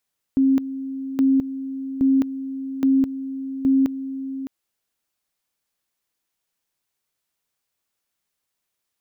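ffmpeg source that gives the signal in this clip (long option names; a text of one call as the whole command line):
ffmpeg -f lavfi -i "aevalsrc='pow(10,(-13.5-13*gte(mod(t,0.82),0.21))/20)*sin(2*PI*268*t)':duration=4.1:sample_rate=44100" out.wav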